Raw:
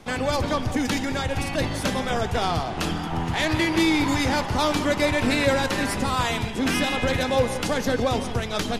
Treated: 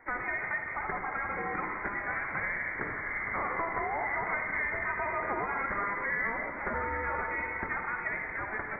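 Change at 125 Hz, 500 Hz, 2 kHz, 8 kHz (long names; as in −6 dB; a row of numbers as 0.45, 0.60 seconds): −19.5 dB, −14.0 dB, −3.0 dB, below −40 dB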